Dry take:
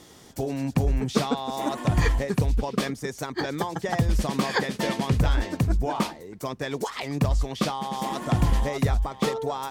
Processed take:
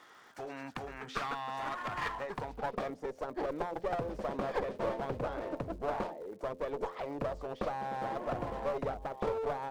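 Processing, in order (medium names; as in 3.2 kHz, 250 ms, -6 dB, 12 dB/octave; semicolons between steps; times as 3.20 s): band-pass sweep 1.4 kHz -> 560 Hz, 1.82–3.12 s; in parallel at -3 dB: compression, threshold -40 dBFS, peak gain reduction 13.5 dB; on the sum: one-sided clip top -37.5 dBFS; de-hum 87.27 Hz, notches 7; crackle 240 per s -56 dBFS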